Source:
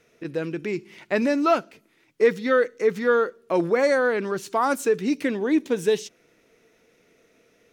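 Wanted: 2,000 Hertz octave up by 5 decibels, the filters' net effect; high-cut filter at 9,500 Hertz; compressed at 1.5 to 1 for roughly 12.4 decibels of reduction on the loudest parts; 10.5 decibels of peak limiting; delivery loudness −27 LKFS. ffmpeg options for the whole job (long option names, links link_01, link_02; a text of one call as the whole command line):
ffmpeg -i in.wav -af "lowpass=9500,equalizer=frequency=2000:width_type=o:gain=6.5,acompressor=threshold=-50dB:ratio=1.5,volume=11.5dB,alimiter=limit=-17.5dB:level=0:latency=1" out.wav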